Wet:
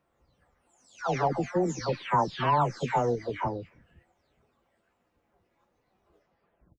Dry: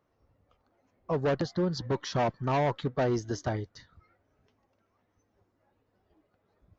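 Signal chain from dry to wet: delay that grows with frequency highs early, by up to 565 ms; dynamic bell 750 Hz, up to +6 dB, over -45 dBFS, Q 4.3; formant shift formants +5 st; trim +2 dB

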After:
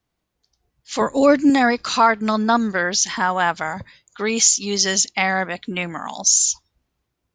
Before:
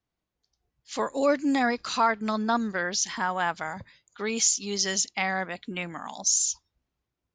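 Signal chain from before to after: 1.01–1.50 s: tone controls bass +9 dB, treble -1 dB; trim +8 dB

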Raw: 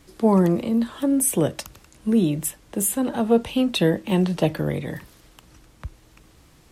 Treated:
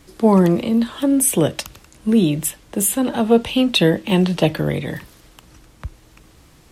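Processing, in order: dynamic bell 3.2 kHz, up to +5 dB, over -47 dBFS, Q 1.1; trim +4 dB

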